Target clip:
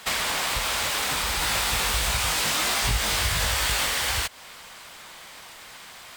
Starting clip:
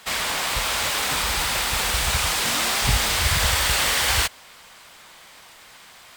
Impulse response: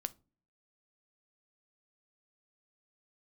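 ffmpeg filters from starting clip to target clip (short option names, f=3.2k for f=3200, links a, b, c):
-filter_complex "[0:a]acompressor=threshold=-26dB:ratio=6,asettb=1/sr,asplit=3[a][b][c];[a]atrim=end=1.404[d];[b]atrim=start=1.4:end=3.86,asetpts=PTS-STARTPTS,afade=t=in:d=0.004:c=qsin,afade=t=out:st=2.456:d=0.004:c=qsin,asplit=2[e][f];[f]adelay=19,volume=-3.5dB[g];[e][g]amix=inputs=2:normalize=0,atrim=end_sample=108486[h];[c]atrim=start=3.856[i];[d][h]acrossfade=d=0.004:c1=hsin:c2=qsin[j];[j][i]acrossfade=d=0.004:c1=qsin:c2=hsin,volume=3dB"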